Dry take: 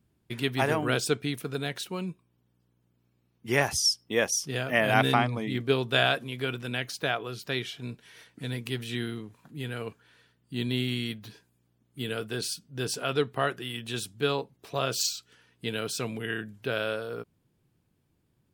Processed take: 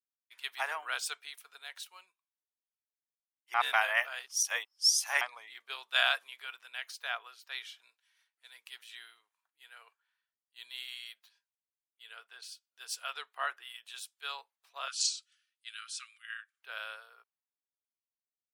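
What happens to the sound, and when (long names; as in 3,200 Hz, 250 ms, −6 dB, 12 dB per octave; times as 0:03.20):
0:03.54–0:05.21: reverse
0:11.28–0:12.63: high-shelf EQ 9,800 Hz → 5,700 Hz −11 dB
0:14.88–0:16.62: linear-phase brick-wall band-pass 1,100–11,000 Hz
whole clip: high-pass filter 880 Hz 24 dB per octave; multiband upward and downward expander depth 70%; level −7 dB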